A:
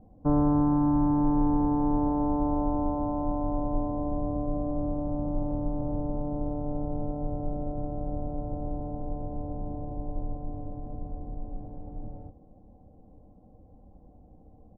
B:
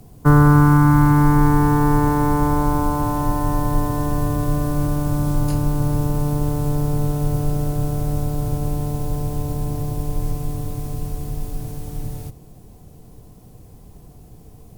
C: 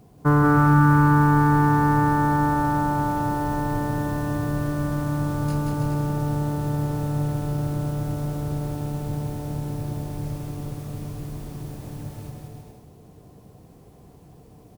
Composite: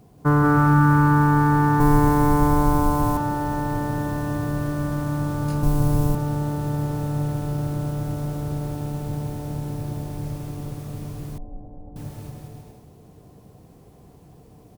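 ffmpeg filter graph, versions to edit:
-filter_complex "[1:a]asplit=2[s0][s1];[2:a]asplit=4[s2][s3][s4][s5];[s2]atrim=end=1.802[s6];[s0]atrim=start=1.798:end=3.172[s7];[s3]atrim=start=3.168:end=5.632[s8];[s1]atrim=start=5.628:end=6.152[s9];[s4]atrim=start=6.148:end=11.382[s10];[0:a]atrim=start=11.378:end=11.962[s11];[s5]atrim=start=11.958[s12];[s6][s7]acrossfade=d=0.004:c1=hsin:c2=hsin[s13];[s13][s8]acrossfade=d=0.004:c1=hsin:c2=hsin[s14];[s14][s9]acrossfade=d=0.004:c1=hsin:c2=hsin[s15];[s15][s10]acrossfade=d=0.004:c1=hsin:c2=hsin[s16];[s16][s11]acrossfade=d=0.004:c1=hsin:c2=hsin[s17];[s17][s12]acrossfade=d=0.004:c1=hsin:c2=hsin"

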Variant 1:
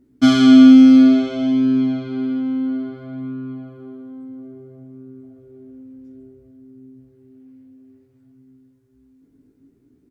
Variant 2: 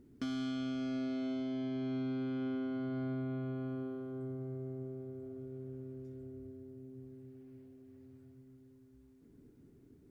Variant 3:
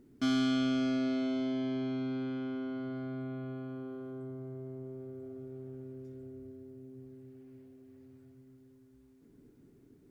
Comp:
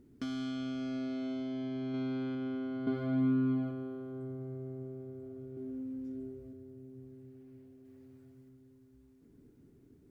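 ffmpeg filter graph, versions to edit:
-filter_complex "[2:a]asplit=2[s0][s1];[0:a]asplit=2[s2][s3];[1:a]asplit=5[s4][s5][s6][s7][s8];[s4]atrim=end=1.942[s9];[s0]atrim=start=1.938:end=2.352[s10];[s5]atrim=start=2.348:end=2.872[s11];[s2]atrim=start=2.868:end=3.712[s12];[s6]atrim=start=3.708:end=5.572[s13];[s3]atrim=start=5.568:end=6.532[s14];[s7]atrim=start=6.528:end=7.852[s15];[s1]atrim=start=7.848:end=8.492[s16];[s8]atrim=start=8.488[s17];[s9][s10]acrossfade=d=0.004:c1=hsin:c2=hsin[s18];[s18][s11]acrossfade=d=0.004:c1=hsin:c2=hsin[s19];[s19][s12]acrossfade=d=0.004:c1=hsin:c2=hsin[s20];[s20][s13]acrossfade=d=0.004:c1=hsin:c2=hsin[s21];[s21][s14]acrossfade=d=0.004:c1=hsin:c2=hsin[s22];[s22][s15]acrossfade=d=0.004:c1=hsin:c2=hsin[s23];[s23][s16]acrossfade=d=0.004:c1=hsin:c2=hsin[s24];[s24][s17]acrossfade=d=0.004:c1=hsin:c2=hsin"

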